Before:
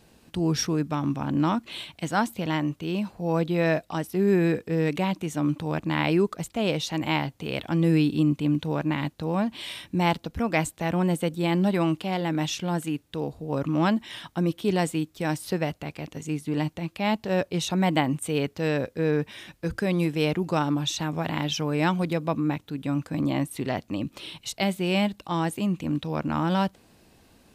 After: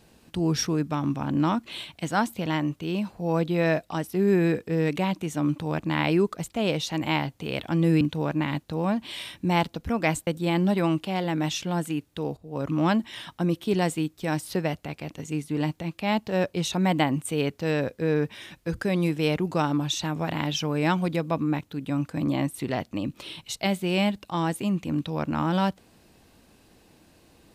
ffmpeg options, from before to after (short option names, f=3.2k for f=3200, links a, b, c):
-filter_complex "[0:a]asplit=4[a][b][c][d];[a]atrim=end=8.012[e];[b]atrim=start=8.508:end=10.772[f];[c]atrim=start=11.238:end=13.34,asetpts=PTS-STARTPTS,afade=t=out:st=2.098:d=0.004:c=hsin:silence=0.199526[g];[d]atrim=start=13.34,asetpts=PTS-STARTPTS,afade=t=in:d=0.34:silence=0.199526[h];[e][f]acrossfade=d=0.004:c1=hsin:c2=hsin[i];[g][h]concat=n=2:v=0:a=1[j];[i][j]acrossfade=d=0.004:c1=hsin:c2=hsin"